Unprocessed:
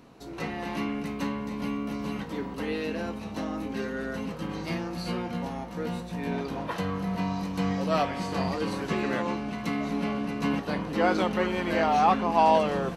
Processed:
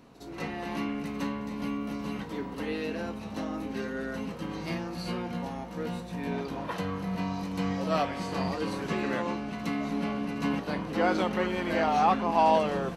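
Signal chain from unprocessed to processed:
echo ahead of the sound 60 ms −14.5 dB
level −2 dB

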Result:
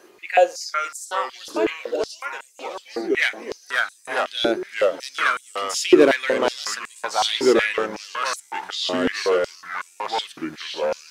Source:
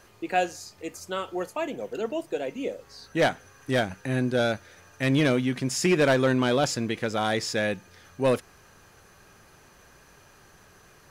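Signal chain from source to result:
delay with pitch and tempo change per echo 333 ms, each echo −3 semitones, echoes 3
high-pass on a step sequencer 5.4 Hz 340–8,000 Hz
level +1.5 dB

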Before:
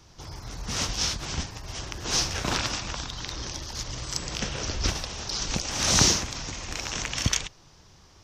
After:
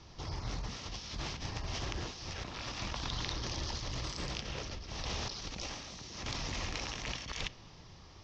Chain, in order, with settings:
brickwall limiter −16.5 dBFS, peak gain reduction 11 dB
compressor whose output falls as the input rises −36 dBFS, ratio −1
low-pass filter 5,500 Hz 24 dB per octave
notch filter 1,500 Hz, Q 10
on a send at −18.5 dB: convolution reverb RT60 2.7 s, pre-delay 3 ms
on the sum: highs frequency-modulated by the lows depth 0.2 ms
level −3.5 dB

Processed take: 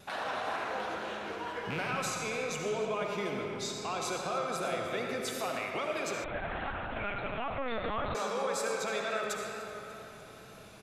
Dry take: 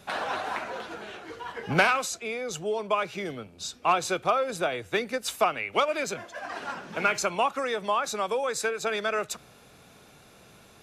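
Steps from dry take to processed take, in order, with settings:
loose part that buzzes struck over −31 dBFS, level −16 dBFS
in parallel at 0 dB: downward compressor, threshold −35 dBFS, peak gain reduction 17 dB
on the sum: brickwall limiter −20 dBFS, peak gain reduction 10.5 dB
on a send: repeating echo 296 ms, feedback 53%, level −19.5 dB
on the sum: comb and all-pass reverb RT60 3.5 s, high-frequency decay 0.6×, pre-delay 30 ms, DRR −0.5 dB
tape wow and flutter 28 cents
0:06.24–0:08.15: linear-prediction vocoder at 8 kHz pitch kept
level −8 dB

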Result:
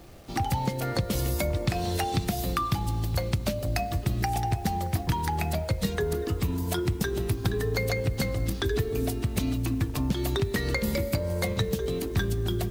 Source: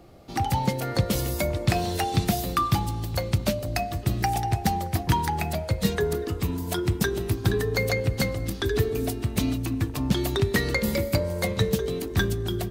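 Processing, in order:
downward compressor 6 to 1, threshold −24 dBFS, peak gain reduction 8 dB
low-shelf EQ 65 Hz +7.5 dB
bit reduction 9 bits

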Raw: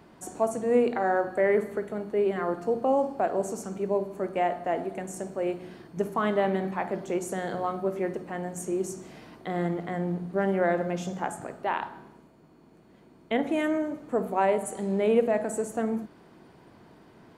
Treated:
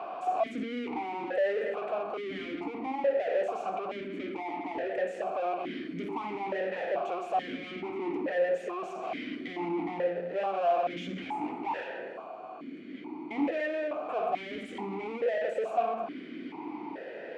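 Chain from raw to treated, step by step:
mid-hump overdrive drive 40 dB, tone 1,900 Hz, clips at −11.5 dBFS
formant filter that steps through the vowels 2.3 Hz
level −2 dB

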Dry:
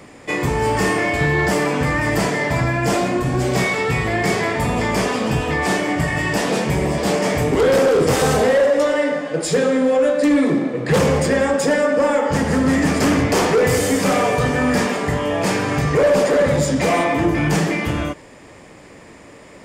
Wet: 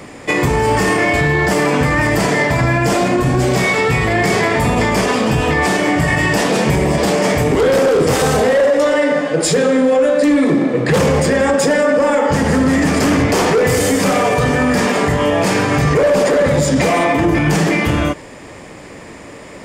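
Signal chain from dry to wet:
boost into a limiter +12.5 dB
level −5 dB

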